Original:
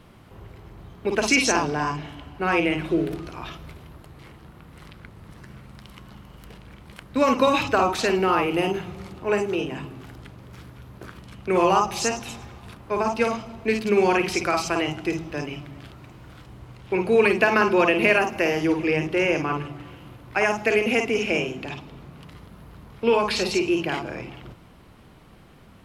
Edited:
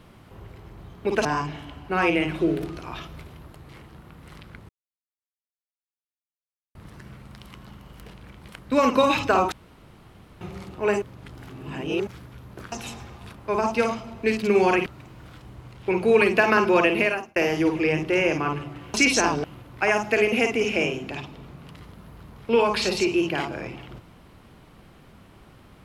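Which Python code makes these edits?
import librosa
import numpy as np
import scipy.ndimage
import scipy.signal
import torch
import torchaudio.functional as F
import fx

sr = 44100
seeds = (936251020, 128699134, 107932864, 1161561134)

y = fx.edit(x, sr, fx.move(start_s=1.25, length_s=0.5, to_s=19.98),
    fx.insert_silence(at_s=5.19, length_s=2.06),
    fx.room_tone_fill(start_s=7.96, length_s=0.89),
    fx.reverse_span(start_s=9.46, length_s=1.05),
    fx.cut(start_s=11.16, length_s=0.98),
    fx.cut(start_s=14.28, length_s=1.62),
    fx.fade_out_span(start_s=17.92, length_s=0.48), tone=tone)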